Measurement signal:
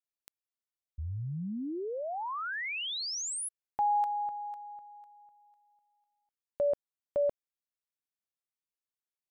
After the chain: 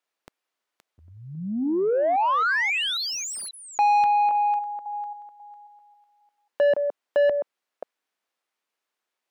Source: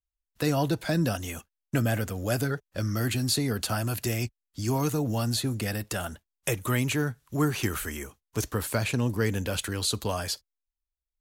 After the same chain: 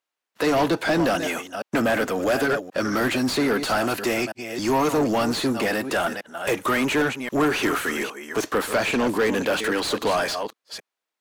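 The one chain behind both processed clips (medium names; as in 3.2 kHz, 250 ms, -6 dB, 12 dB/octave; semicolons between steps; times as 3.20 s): chunks repeated in reverse 270 ms, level -13 dB; Chebyshev high-pass 250 Hz, order 2; overdrive pedal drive 25 dB, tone 1.6 kHz, clips at -13.5 dBFS; trim +2 dB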